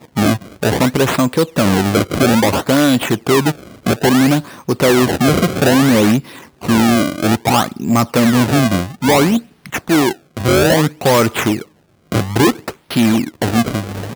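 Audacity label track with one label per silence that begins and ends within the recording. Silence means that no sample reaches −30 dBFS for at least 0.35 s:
11.630000	12.120000	silence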